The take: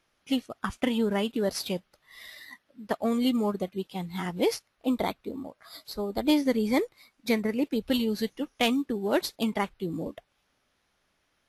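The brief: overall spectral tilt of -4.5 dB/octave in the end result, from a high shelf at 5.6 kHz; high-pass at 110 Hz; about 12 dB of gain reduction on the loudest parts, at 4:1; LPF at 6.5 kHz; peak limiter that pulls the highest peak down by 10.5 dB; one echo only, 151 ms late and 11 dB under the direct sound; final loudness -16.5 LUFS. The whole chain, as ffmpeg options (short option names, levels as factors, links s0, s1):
-af "highpass=110,lowpass=6500,highshelf=f=5600:g=-4,acompressor=threshold=0.0178:ratio=4,alimiter=level_in=1.88:limit=0.0631:level=0:latency=1,volume=0.531,aecho=1:1:151:0.282,volume=15.8"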